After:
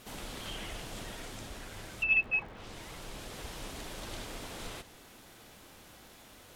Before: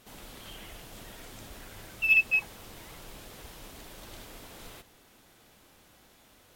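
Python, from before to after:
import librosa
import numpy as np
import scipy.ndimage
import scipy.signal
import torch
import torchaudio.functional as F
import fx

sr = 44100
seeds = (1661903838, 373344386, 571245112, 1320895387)

y = fx.env_lowpass_down(x, sr, base_hz=1900.0, full_db=-29.0)
y = fx.rider(y, sr, range_db=5, speed_s=2.0)
y = fx.dmg_crackle(y, sr, seeds[0], per_s=130.0, level_db=-50.0)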